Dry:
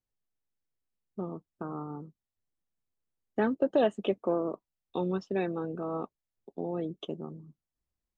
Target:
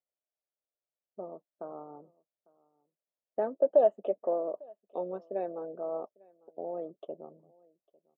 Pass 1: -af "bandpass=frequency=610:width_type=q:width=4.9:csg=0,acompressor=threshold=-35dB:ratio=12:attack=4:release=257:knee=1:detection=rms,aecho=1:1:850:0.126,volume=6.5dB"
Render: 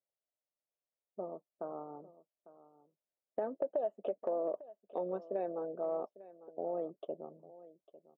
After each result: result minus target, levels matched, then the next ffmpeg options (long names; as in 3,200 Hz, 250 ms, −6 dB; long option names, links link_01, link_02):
downward compressor: peak gain reduction +14 dB; echo-to-direct +8.5 dB
-af "bandpass=frequency=610:width_type=q:width=4.9:csg=0,aecho=1:1:850:0.126,volume=6.5dB"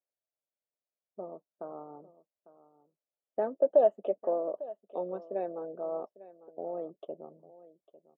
echo-to-direct +8.5 dB
-af "bandpass=frequency=610:width_type=q:width=4.9:csg=0,aecho=1:1:850:0.0473,volume=6.5dB"